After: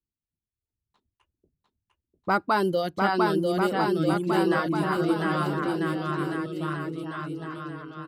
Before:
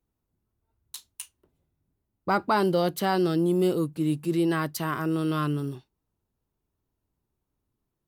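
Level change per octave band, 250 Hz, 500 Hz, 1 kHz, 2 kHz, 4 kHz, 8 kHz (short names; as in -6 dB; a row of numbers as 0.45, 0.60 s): +0.5, +1.5, +3.5, +5.0, +1.5, -6.5 dB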